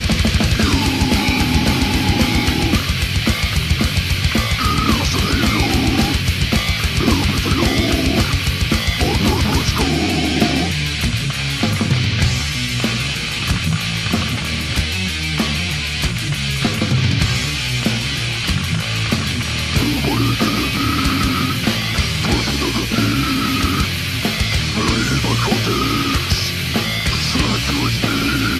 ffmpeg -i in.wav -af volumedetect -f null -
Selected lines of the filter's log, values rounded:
mean_volume: -17.2 dB
max_volume: -1.5 dB